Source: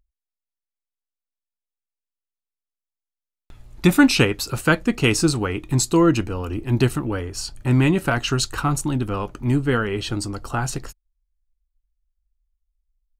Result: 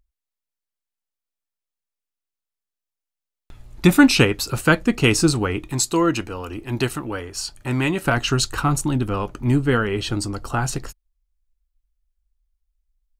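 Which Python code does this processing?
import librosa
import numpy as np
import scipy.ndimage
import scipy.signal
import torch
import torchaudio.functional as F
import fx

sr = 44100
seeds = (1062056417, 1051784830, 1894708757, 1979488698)

y = fx.low_shelf(x, sr, hz=340.0, db=-9.5, at=(5.68, 8.06))
y = y * 10.0 ** (1.5 / 20.0)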